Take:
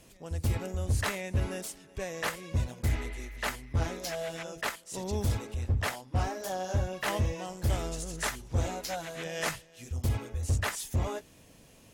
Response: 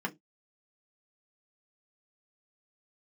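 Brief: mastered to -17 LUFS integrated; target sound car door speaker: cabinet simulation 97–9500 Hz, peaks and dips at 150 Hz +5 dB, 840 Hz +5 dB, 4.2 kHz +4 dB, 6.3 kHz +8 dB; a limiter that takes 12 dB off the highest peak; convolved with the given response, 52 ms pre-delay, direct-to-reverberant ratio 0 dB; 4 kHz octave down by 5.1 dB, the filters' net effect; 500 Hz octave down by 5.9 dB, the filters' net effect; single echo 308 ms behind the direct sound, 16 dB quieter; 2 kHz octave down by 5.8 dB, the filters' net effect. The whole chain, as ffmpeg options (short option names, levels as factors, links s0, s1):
-filter_complex "[0:a]equalizer=f=500:t=o:g=-8,equalizer=f=2000:t=o:g=-5,equalizer=f=4000:t=o:g=-8.5,alimiter=level_in=2.51:limit=0.0631:level=0:latency=1,volume=0.398,aecho=1:1:308:0.158,asplit=2[s0][s1];[1:a]atrim=start_sample=2205,adelay=52[s2];[s1][s2]afir=irnorm=-1:irlink=0,volume=0.562[s3];[s0][s3]amix=inputs=2:normalize=0,highpass=97,equalizer=f=150:t=q:w=4:g=5,equalizer=f=840:t=q:w=4:g=5,equalizer=f=4200:t=q:w=4:g=4,equalizer=f=6300:t=q:w=4:g=8,lowpass=f=9500:w=0.5412,lowpass=f=9500:w=1.3066,volume=11.2"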